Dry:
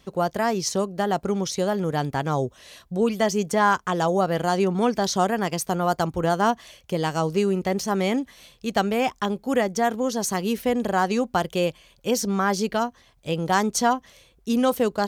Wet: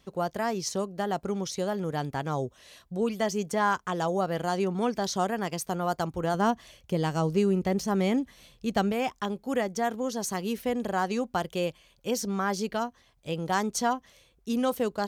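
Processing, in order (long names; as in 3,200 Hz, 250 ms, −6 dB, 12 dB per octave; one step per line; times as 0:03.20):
0:06.34–0:08.92: low-shelf EQ 310 Hz +7.5 dB
level −6 dB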